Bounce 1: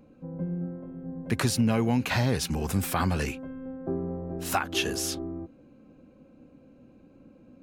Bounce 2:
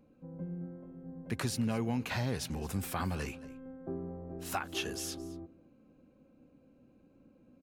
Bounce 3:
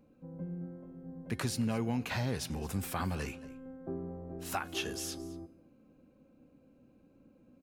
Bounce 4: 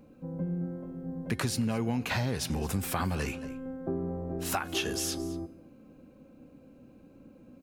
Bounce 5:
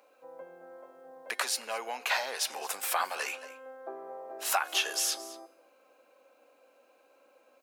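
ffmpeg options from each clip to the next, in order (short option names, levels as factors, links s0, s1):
-af "aecho=1:1:220:0.112,volume=0.376"
-af "bandreject=f=360.4:t=h:w=4,bandreject=f=720.8:t=h:w=4,bandreject=f=1081.2:t=h:w=4,bandreject=f=1441.6:t=h:w=4,bandreject=f=1802:t=h:w=4,bandreject=f=2162.4:t=h:w=4,bandreject=f=2522.8:t=h:w=4,bandreject=f=2883.2:t=h:w=4,bandreject=f=3243.6:t=h:w=4,bandreject=f=3604:t=h:w=4,bandreject=f=3964.4:t=h:w=4,bandreject=f=4324.8:t=h:w=4,bandreject=f=4685.2:t=h:w=4,bandreject=f=5045.6:t=h:w=4,bandreject=f=5406:t=h:w=4,bandreject=f=5766.4:t=h:w=4,bandreject=f=6126.8:t=h:w=4,bandreject=f=6487.2:t=h:w=4,bandreject=f=6847.6:t=h:w=4,bandreject=f=7208:t=h:w=4,bandreject=f=7568.4:t=h:w=4,bandreject=f=7928.8:t=h:w=4,bandreject=f=8289.2:t=h:w=4,bandreject=f=8649.6:t=h:w=4,bandreject=f=9010:t=h:w=4,bandreject=f=9370.4:t=h:w=4,bandreject=f=9730.8:t=h:w=4,bandreject=f=10091.2:t=h:w=4,bandreject=f=10451.6:t=h:w=4,bandreject=f=10812:t=h:w=4,bandreject=f=11172.4:t=h:w=4,bandreject=f=11532.8:t=h:w=4,bandreject=f=11893.2:t=h:w=4,bandreject=f=12253.6:t=h:w=4,bandreject=f=12614:t=h:w=4,bandreject=f=12974.4:t=h:w=4"
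-af "acompressor=threshold=0.0141:ratio=2.5,volume=2.66"
-af "highpass=f=600:w=0.5412,highpass=f=600:w=1.3066,volume=1.58"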